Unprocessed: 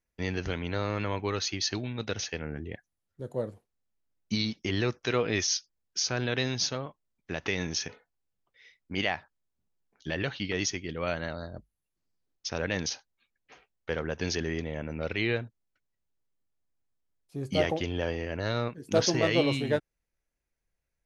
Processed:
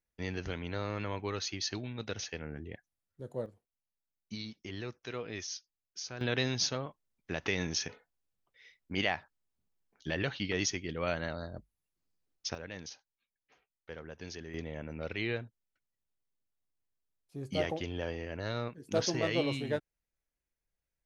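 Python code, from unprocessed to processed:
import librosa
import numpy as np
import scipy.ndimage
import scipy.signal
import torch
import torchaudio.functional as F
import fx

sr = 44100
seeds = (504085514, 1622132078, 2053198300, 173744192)

y = fx.gain(x, sr, db=fx.steps((0.0, -5.5), (3.46, -12.5), (6.21, -2.0), (12.55, -13.5), (14.54, -6.0)))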